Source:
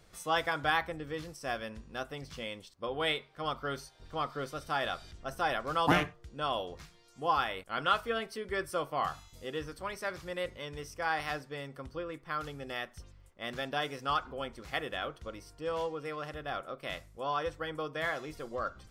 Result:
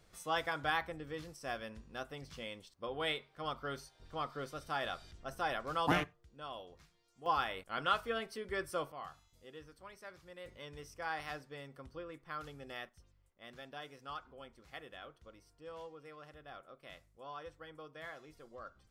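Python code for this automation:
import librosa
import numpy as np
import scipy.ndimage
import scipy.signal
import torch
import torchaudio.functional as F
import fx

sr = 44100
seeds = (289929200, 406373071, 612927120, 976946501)

y = fx.gain(x, sr, db=fx.steps((0.0, -5.0), (6.04, -13.0), (7.26, -4.0), (8.92, -14.5), (10.46, -7.5), (12.89, -14.0)))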